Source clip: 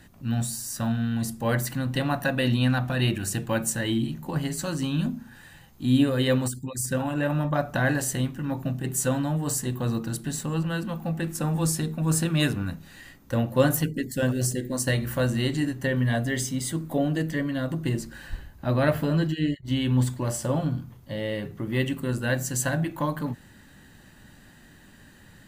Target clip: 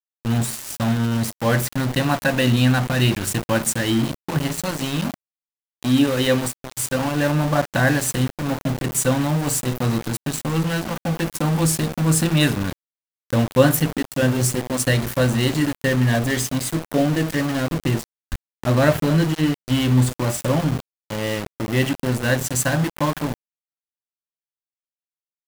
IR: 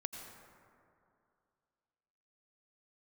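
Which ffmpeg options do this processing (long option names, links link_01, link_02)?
-filter_complex "[0:a]asettb=1/sr,asplit=3[link_01][link_02][link_03];[link_01]atrim=end=4.714[link_04];[link_02]atrim=start=4.71:end=6.99,asetpts=PTS-STARTPTS,afade=type=in:duration=0.004:curve=qsin,afade=type=out:start_time=2.276:duration=0.004:curve=qsin,lowshelf=frequency=150:gain=-9[link_05];[link_03]atrim=start=6.986[link_06];[link_04][link_05]acrossfade=duration=0.004:curve1=hsin:curve2=qsin[link_07];[link_07][link_06]acrossfade=duration=0.004:curve1=qsin:curve2=hsin,aeval=exprs='val(0)*gte(abs(val(0)),0.0335)':channel_layout=same,volume=6dB"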